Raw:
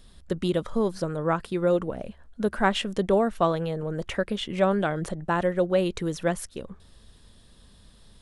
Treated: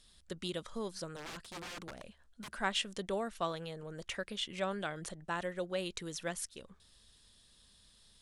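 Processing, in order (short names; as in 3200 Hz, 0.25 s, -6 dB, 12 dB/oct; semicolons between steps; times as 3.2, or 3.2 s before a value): pre-emphasis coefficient 0.9; 1.16–2.51 wrapped overs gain 42 dB; air absorption 59 m; gain +4 dB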